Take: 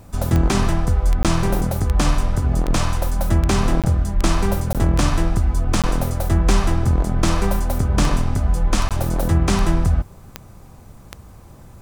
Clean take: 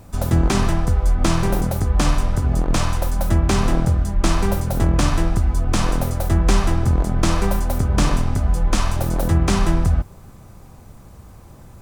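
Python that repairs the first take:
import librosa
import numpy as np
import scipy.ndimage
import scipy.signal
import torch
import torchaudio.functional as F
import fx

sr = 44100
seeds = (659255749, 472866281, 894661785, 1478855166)

y = fx.fix_declick_ar(x, sr, threshold=10.0)
y = fx.fix_interpolate(y, sr, at_s=(1.23, 3.82, 4.73, 5.82, 8.89), length_ms=17.0)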